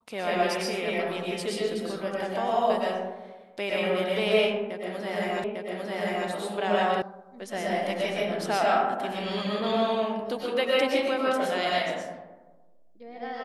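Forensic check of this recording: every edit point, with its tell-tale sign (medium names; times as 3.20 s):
5.44 s: repeat of the last 0.85 s
7.02 s: sound stops dead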